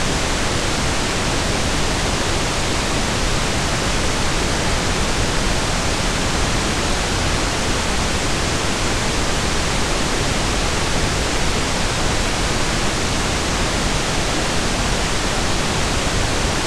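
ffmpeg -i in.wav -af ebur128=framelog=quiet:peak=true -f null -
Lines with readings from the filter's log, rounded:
Integrated loudness:
  I:         -19.1 LUFS
  Threshold: -29.1 LUFS
Loudness range:
  LRA:         0.2 LU
  Threshold: -39.1 LUFS
  LRA low:   -19.1 LUFS
  LRA high:  -19.0 LUFS
True peak:
  Peak:       -5.7 dBFS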